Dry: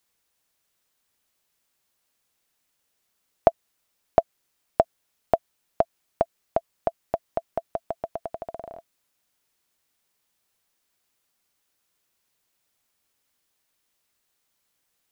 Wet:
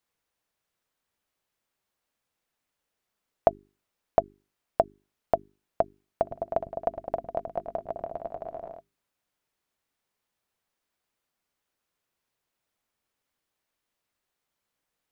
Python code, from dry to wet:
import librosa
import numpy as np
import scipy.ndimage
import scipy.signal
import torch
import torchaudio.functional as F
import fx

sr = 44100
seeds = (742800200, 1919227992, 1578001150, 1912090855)

y = fx.high_shelf(x, sr, hz=3100.0, db=-9.5)
y = fx.hum_notches(y, sr, base_hz=50, count=8)
y = fx.echo_opening(y, sr, ms=104, hz=200, octaves=2, feedback_pct=70, wet_db=-3, at=(6.22, 8.72), fade=0.02)
y = y * librosa.db_to_amplitude(-2.5)